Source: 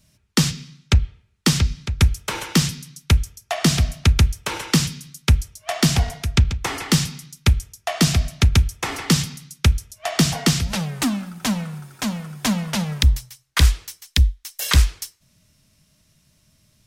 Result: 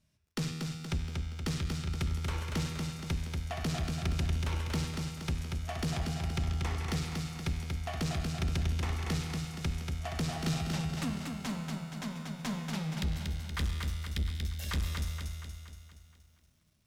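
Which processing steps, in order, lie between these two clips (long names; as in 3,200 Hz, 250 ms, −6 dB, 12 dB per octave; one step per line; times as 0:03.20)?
high-shelf EQ 4,700 Hz −8 dB
tuned comb filter 80 Hz, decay 1.7 s, harmonics all, mix 80%
tube saturation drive 28 dB, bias 0.35
feedback echo at a low word length 236 ms, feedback 55%, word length 12 bits, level −4 dB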